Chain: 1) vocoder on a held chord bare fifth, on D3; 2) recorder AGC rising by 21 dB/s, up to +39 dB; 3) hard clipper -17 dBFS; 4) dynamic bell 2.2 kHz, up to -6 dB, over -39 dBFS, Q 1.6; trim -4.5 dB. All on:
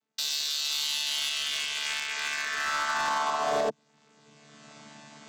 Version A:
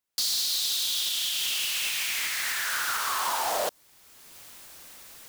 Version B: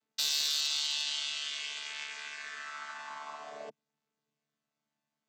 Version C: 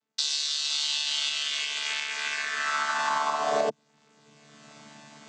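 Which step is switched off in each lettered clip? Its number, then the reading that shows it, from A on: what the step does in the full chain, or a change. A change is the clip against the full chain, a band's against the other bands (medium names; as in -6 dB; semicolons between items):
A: 1, 8 kHz band +7.0 dB; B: 2, crest factor change +6.5 dB; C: 3, distortion -14 dB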